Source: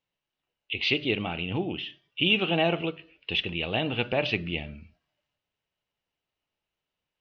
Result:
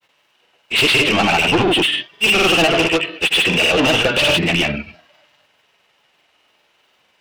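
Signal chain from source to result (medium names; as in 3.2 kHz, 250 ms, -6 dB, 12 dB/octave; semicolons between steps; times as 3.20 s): overdrive pedal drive 34 dB, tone 3.8 kHz, clips at -9 dBFS; granulator, pitch spread up and down by 0 st; trim +4 dB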